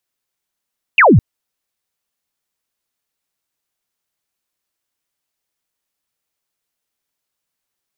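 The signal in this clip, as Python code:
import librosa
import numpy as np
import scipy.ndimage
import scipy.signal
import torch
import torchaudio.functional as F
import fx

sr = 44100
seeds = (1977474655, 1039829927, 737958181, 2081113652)

y = fx.laser_zap(sr, level_db=-5.0, start_hz=2900.0, end_hz=84.0, length_s=0.21, wave='sine')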